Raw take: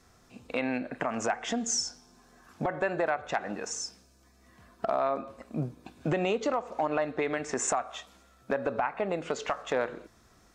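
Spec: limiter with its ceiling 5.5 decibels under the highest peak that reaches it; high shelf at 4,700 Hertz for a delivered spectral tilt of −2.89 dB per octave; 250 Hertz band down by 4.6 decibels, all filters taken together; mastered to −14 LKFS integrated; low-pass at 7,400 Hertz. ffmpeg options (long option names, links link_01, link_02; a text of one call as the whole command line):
ffmpeg -i in.wav -af "lowpass=7400,equalizer=frequency=250:width_type=o:gain=-6,highshelf=frequency=4700:gain=4.5,volume=19.5dB,alimiter=limit=-0.5dB:level=0:latency=1" out.wav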